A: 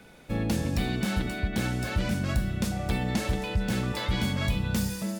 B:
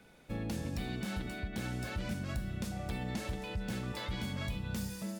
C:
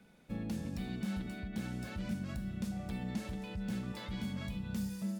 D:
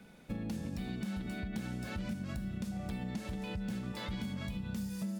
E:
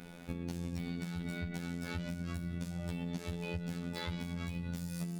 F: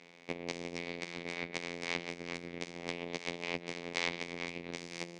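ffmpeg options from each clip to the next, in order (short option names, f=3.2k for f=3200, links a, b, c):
-af "alimiter=limit=-19.5dB:level=0:latency=1:release=159,volume=-8dB"
-af "equalizer=f=200:t=o:w=0.59:g=9,volume=-5.5dB"
-af "acompressor=threshold=-41dB:ratio=6,volume=6dB"
-af "acompressor=threshold=-44dB:ratio=2.5,afftfilt=real='hypot(re,im)*cos(PI*b)':imag='0':win_size=2048:overlap=0.75,volume=10dB"
-af "aeval=exprs='0.112*(cos(1*acos(clip(val(0)/0.112,-1,1)))-cos(1*PI/2))+0.0355*(cos(3*acos(clip(val(0)/0.112,-1,1)))-cos(3*PI/2))+0.00355*(cos(6*acos(clip(val(0)/0.112,-1,1)))-cos(6*PI/2))':c=same,highpass=200,equalizer=f=470:t=q:w=4:g=4,equalizer=f=1.4k:t=q:w=4:g=-9,equalizer=f=2.2k:t=q:w=4:g=10,lowpass=f=6.3k:w=0.5412,lowpass=f=6.3k:w=1.3066,volume=11dB"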